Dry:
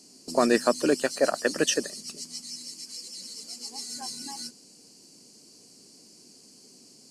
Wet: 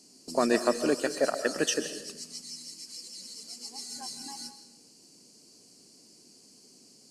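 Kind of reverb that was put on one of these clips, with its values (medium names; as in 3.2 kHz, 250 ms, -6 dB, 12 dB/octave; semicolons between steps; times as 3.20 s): algorithmic reverb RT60 0.85 s, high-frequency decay 0.8×, pre-delay 100 ms, DRR 10 dB; trim -3.5 dB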